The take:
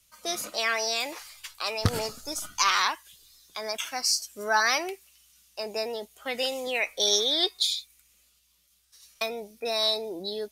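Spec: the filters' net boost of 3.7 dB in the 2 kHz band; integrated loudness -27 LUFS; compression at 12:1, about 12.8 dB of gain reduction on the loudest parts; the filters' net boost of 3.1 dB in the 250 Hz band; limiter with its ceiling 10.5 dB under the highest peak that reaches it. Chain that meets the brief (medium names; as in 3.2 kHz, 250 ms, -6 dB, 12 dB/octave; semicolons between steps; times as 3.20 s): peaking EQ 250 Hz +4 dB; peaking EQ 2 kHz +4.5 dB; compression 12:1, threshold -29 dBFS; trim +8.5 dB; peak limiter -16 dBFS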